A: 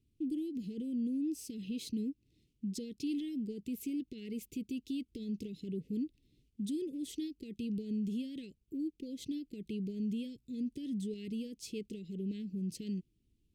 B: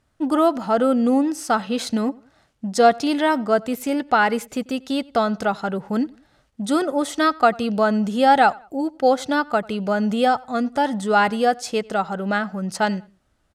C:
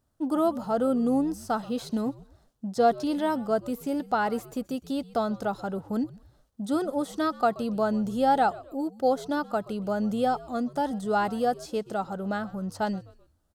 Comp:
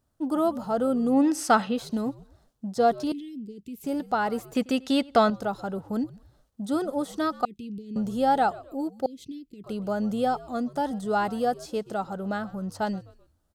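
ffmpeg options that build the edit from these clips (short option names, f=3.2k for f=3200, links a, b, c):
-filter_complex "[1:a]asplit=2[a][b];[0:a]asplit=3[c][d][e];[2:a]asplit=6[f][g][h][i][j][k];[f]atrim=end=1.25[l];[a]atrim=start=1.09:end=1.79[m];[g]atrim=start=1.63:end=3.122[n];[c]atrim=start=3.118:end=3.842[o];[h]atrim=start=3.838:end=4.552[p];[b]atrim=start=4.548:end=5.302[q];[i]atrim=start=5.298:end=7.452[r];[d]atrim=start=7.448:end=7.962[s];[j]atrim=start=7.958:end=9.062[t];[e]atrim=start=9.058:end=9.642[u];[k]atrim=start=9.638[v];[l][m]acrossfade=d=0.16:c1=tri:c2=tri[w];[w][n]acrossfade=d=0.16:c1=tri:c2=tri[x];[x][o]acrossfade=d=0.004:c1=hsin:c2=hsin[y];[y][p]acrossfade=d=0.004:c1=hsin:c2=hsin[z];[z][q]acrossfade=d=0.004:c1=hsin:c2=hsin[aa];[aa][r]acrossfade=d=0.004:c1=hsin:c2=hsin[ab];[ab][s]acrossfade=d=0.004:c1=hsin:c2=hsin[ac];[ac][t]acrossfade=d=0.004:c1=hsin:c2=hsin[ad];[ad][u]acrossfade=d=0.004:c1=hsin:c2=hsin[ae];[ae][v]acrossfade=d=0.004:c1=hsin:c2=hsin"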